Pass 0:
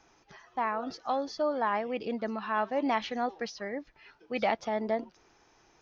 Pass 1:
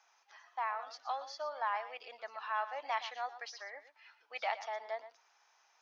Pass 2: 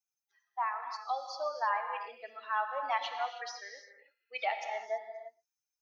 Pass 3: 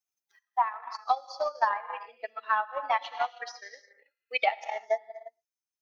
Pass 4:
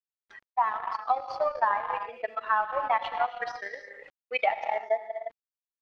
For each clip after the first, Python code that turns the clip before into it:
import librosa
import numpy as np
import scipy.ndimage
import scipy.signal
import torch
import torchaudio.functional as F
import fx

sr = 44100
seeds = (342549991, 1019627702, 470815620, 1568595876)

y1 = scipy.signal.sosfilt(scipy.signal.butter(4, 730.0, 'highpass', fs=sr, output='sos'), x)
y1 = y1 + 10.0 ** (-13.5 / 20.0) * np.pad(y1, (int(118 * sr / 1000.0), 0))[:len(y1)]
y1 = y1 * 10.0 ** (-4.5 / 20.0)
y2 = fx.bin_expand(y1, sr, power=2.0)
y2 = fx.low_shelf(y2, sr, hz=330.0, db=3.5)
y2 = fx.rev_gated(y2, sr, seeds[0], gate_ms=350, shape='flat', drr_db=5.5)
y2 = y2 * 10.0 ** (6.0 / 20.0)
y3 = fx.transient(y2, sr, attack_db=11, sustain_db=-7)
y4 = fx.law_mismatch(y3, sr, coded='A')
y4 = scipy.signal.sosfilt(scipy.signal.butter(2, 2100.0, 'lowpass', fs=sr, output='sos'), y4)
y4 = fx.env_flatten(y4, sr, amount_pct=50)